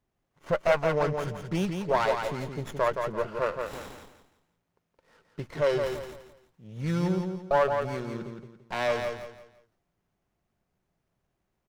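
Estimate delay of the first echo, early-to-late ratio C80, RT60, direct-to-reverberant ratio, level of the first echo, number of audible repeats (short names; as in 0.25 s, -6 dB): 0.17 s, none, none, none, -5.5 dB, 3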